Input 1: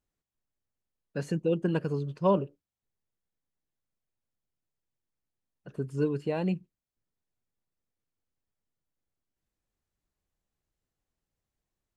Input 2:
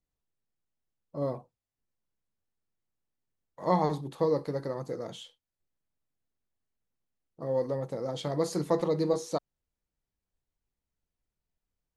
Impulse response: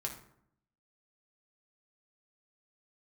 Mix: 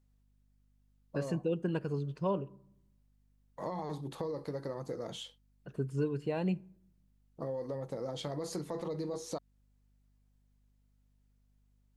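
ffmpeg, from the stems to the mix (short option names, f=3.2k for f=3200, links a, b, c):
-filter_complex "[0:a]aeval=exprs='val(0)+0.000447*(sin(2*PI*50*n/s)+sin(2*PI*2*50*n/s)/2+sin(2*PI*3*50*n/s)/3+sin(2*PI*4*50*n/s)/4+sin(2*PI*5*50*n/s)/5)':c=same,volume=-3dB,asplit=2[a][b];[b]volume=-16.5dB[c];[1:a]alimiter=limit=-22dB:level=0:latency=1:release=13,acompressor=threshold=-37dB:ratio=6,volume=2dB[d];[2:a]atrim=start_sample=2205[e];[c][e]afir=irnorm=-1:irlink=0[f];[a][d][f]amix=inputs=3:normalize=0,alimiter=limit=-22.5dB:level=0:latency=1:release=481"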